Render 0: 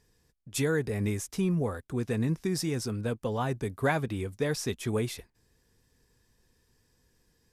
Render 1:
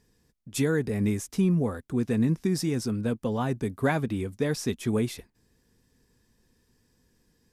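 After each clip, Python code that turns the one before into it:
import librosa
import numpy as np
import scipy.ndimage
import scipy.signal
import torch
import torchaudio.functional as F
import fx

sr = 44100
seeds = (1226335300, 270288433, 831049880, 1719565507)

y = fx.peak_eq(x, sr, hz=230.0, db=7.0, octaves=1.0)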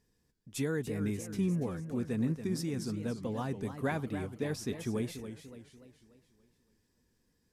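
y = fx.echo_warbled(x, sr, ms=287, feedback_pct=47, rate_hz=2.8, cents=165, wet_db=-10)
y = y * librosa.db_to_amplitude(-8.0)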